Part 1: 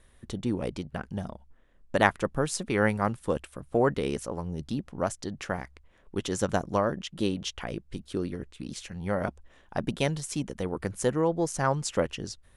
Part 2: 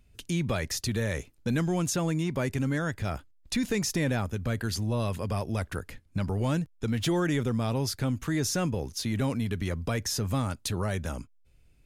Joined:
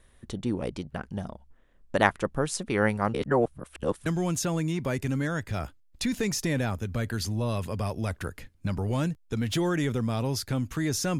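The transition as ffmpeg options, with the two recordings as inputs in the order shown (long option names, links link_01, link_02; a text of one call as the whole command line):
ffmpeg -i cue0.wav -i cue1.wav -filter_complex "[0:a]apad=whole_dur=11.19,atrim=end=11.19,asplit=2[link_01][link_02];[link_01]atrim=end=3.142[link_03];[link_02]atrim=start=3.138:end=4.062,asetpts=PTS-STARTPTS,areverse[link_04];[1:a]atrim=start=1.568:end=8.7[link_05];[link_03][link_04]acrossfade=duration=0.004:curve1=hsin:curve2=hsin[link_06];[link_06][link_05]acrossfade=duration=0.004:curve1=hsin:curve2=hsin" out.wav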